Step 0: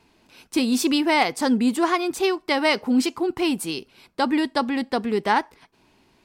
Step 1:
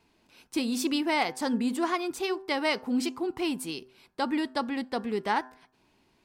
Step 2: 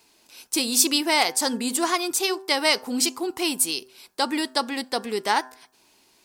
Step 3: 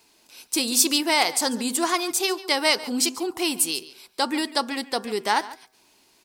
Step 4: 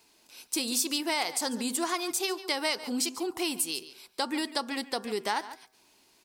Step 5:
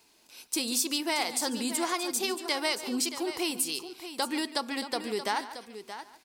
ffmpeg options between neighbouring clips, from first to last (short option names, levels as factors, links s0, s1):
-af "bandreject=f=128.1:t=h:w=4,bandreject=f=256.2:t=h:w=4,bandreject=f=384.3:t=h:w=4,bandreject=f=512.4:t=h:w=4,bandreject=f=640.5:t=h:w=4,bandreject=f=768.6:t=h:w=4,bandreject=f=896.7:t=h:w=4,bandreject=f=1024.8:t=h:w=4,bandreject=f=1152.9:t=h:w=4,bandreject=f=1281:t=h:w=4,bandreject=f=1409.1:t=h:w=4,bandreject=f=1537.2:t=h:w=4,bandreject=f=1665.3:t=h:w=4,bandreject=f=1793.4:t=h:w=4,volume=0.447"
-af "bass=f=250:g=-11,treble=f=4000:g=14,volume=1.78"
-af "aecho=1:1:143:0.133"
-af "acompressor=threshold=0.0631:ratio=2.5,volume=0.668"
-af "aecho=1:1:626:0.266"